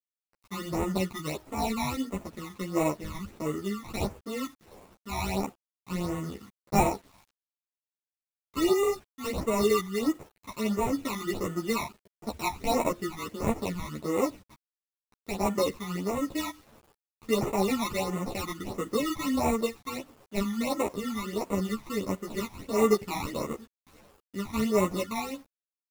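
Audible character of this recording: aliases and images of a low sample rate 1600 Hz, jitter 0%; phasing stages 12, 1.5 Hz, lowest notch 480–4700 Hz; a quantiser's noise floor 10-bit, dither none; a shimmering, thickened sound

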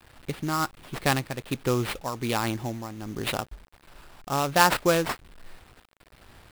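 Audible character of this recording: aliases and images of a low sample rate 6400 Hz, jitter 20%; tremolo triangle 1.3 Hz, depth 65%; a quantiser's noise floor 10-bit, dither none

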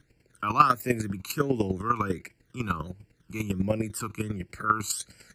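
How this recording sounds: phasing stages 12, 1.4 Hz, lowest notch 560–1200 Hz; chopped level 10 Hz, depth 65%, duty 15%

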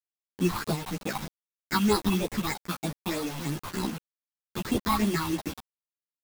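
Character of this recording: aliases and images of a low sample rate 3000 Hz, jitter 0%; phasing stages 6, 3.2 Hz, lowest notch 460–2100 Hz; a quantiser's noise floor 6-bit, dither none; a shimmering, thickened sound

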